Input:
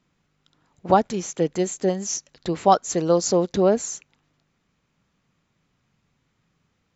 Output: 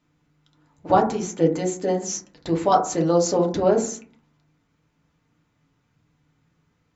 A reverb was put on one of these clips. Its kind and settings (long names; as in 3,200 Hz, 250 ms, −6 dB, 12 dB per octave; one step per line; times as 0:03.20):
feedback delay network reverb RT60 0.45 s, low-frequency decay 1.45×, high-frequency decay 0.3×, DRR −0.5 dB
level −2.5 dB